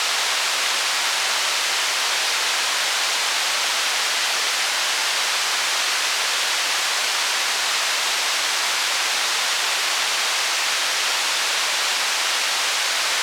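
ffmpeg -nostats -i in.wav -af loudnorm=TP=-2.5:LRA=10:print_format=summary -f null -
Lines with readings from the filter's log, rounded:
Input Integrated:    -18.9 LUFS
Input True Peak:      -8.0 dBTP
Input LRA:             0.2 LU
Input Threshold:     -28.9 LUFS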